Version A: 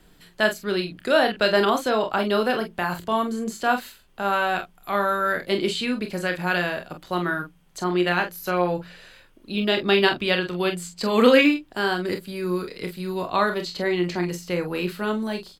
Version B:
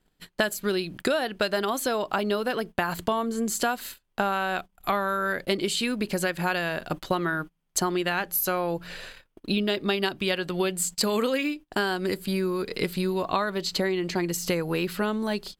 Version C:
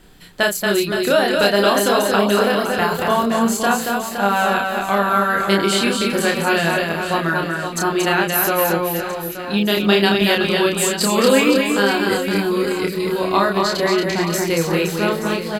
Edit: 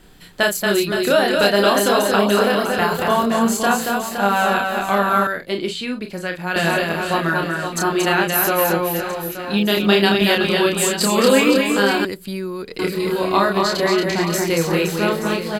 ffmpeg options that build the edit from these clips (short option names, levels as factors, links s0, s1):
-filter_complex "[2:a]asplit=3[s0][s1][s2];[s0]atrim=end=5.272[s3];[0:a]atrim=start=5.268:end=6.562[s4];[s1]atrim=start=6.558:end=12.052[s5];[1:a]atrim=start=12.048:end=12.792[s6];[s2]atrim=start=12.788[s7];[s3][s4]acrossfade=d=0.004:c1=hsin:c2=hsin[s8];[s8][s5]acrossfade=d=0.004:c1=hsin:c2=hsin[s9];[s9][s6]acrossfade=d=0.004:c1=hsin:c2=hsin[s10];[s10][s7]acrossfade=d=0.004:c1=hsin:c2=hsin"